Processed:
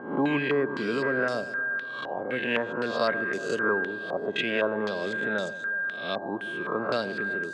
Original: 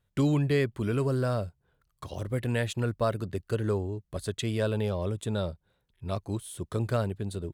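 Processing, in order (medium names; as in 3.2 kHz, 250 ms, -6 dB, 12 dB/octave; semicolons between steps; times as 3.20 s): reverse spectral sustain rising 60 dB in 0.59 s; high-pass 200 Hz 24 dB/octave; on a send: echo whose repeats swap between lows and highs 121 ms, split 1 kHz, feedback 74%, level -12.5 dB; on the sum: whistle 1.6 kHz -36 dBFS; step-sequenced low-pass 3.9 Hz 830–6200 Hz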